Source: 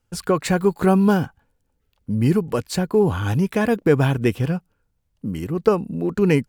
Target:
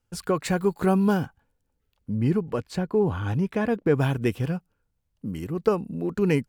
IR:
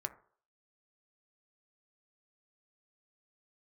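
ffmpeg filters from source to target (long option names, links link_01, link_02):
-filter_complex "[0:a]asettb=1/sr,asplit=3[link_01][link_02][link_03];[link_01]atrim=end=2.104[link_04];[link_02]atrim=start=2.1:end=3.95,asetpts=PTS-STARTPTS,afade=type=in:duration=0.004:curve=qsin,afade=type=out:start_time=1.846:duration=0.004:curve=qsin,lowpass=frequency=2700:poles=1[link_05];[link_03]atrim=start=3.946[link_06];[link_04][link_05]acrossfade=duration=0.004:curve1=hsin:curve2=qsin[link_07];[link_07][link_06]acrossfade=duration=0.004:curve1=qsin:curve2=hsin,volume=-5dB"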